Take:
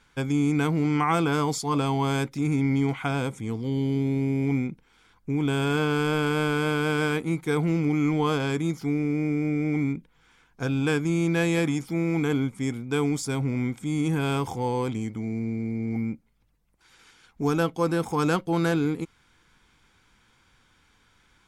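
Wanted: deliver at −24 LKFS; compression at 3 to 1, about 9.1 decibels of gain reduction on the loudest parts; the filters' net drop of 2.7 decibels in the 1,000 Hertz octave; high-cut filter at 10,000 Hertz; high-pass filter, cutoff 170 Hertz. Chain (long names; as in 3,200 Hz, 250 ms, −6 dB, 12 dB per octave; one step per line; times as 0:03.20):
high-pass filter 170 Hz
low-pass filter 10,000 Hz
parametric band 1,000 Hz −3.5 dB
downward compressor 3 to 1, threshold −34 dBFS
level +11.5 dB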